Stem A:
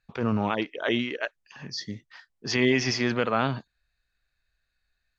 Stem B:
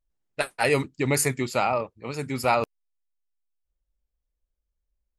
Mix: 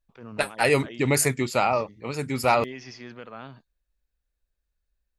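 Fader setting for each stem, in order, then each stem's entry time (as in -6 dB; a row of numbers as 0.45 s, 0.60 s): -16.0 dB, +1.5 dB; 0.00 s, 0.00 s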